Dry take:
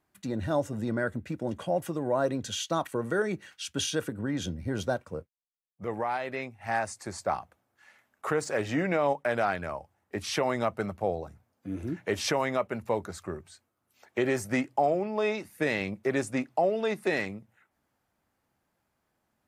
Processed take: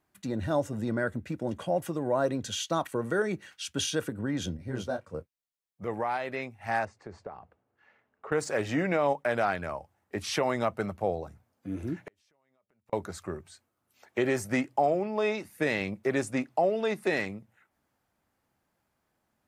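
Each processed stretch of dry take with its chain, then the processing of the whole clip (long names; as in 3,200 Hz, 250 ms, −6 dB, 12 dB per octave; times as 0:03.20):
0:04.57–0:05.14: high-shelf EQ 11,000 Hz −5 dB + micro pitch shift up and down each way 37 cents
0:06.85–0:08.32: downward compressor, threshold −37 dBFS + head-to-tape spacing loss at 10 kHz 32 dB + hollow resonant body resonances 440/2,800 Hz, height 8 dB
0:11.99–0:12.93: downward compressor 12 to 1, threshold −31 dBFS + gate with flip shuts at −32 dBFS, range −36 dB
whole clip: no processing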